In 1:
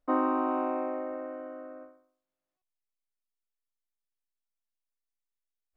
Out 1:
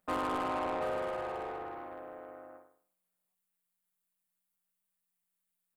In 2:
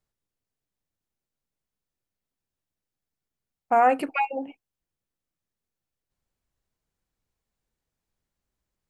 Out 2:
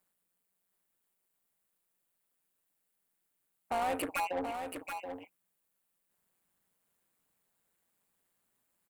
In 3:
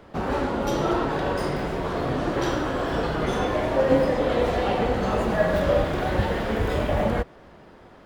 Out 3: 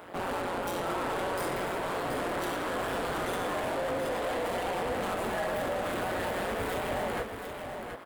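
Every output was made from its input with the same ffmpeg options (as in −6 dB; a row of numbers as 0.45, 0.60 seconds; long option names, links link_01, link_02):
-filter_complex "[0:a]tremolo=f=180:d=0.947,alimiter=limit=-18.5dB:level=0:latency=1:release=76,asplit=2[link_01][link_02];[link_02]highpass=frequency=720:poles=1,volume=23dB,asoftclip=type=tanh:threshold=-18.5dB[link_03];[link_01][link_03]amix=inputs=2:normalize=0,lowpass=frequency=2900:poles=1,volume=-6dB,aexciter=amount=5.8:drive=5.1:freq=7900,asplit=2[link_04][link_05];[link_05]aecho=0:1:728:0.447[link_06];[link_04][link_06]amix=inputs=2:normalize=0,volume=-6.5dB"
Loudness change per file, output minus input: −5.0, −13.0, −8.0 LU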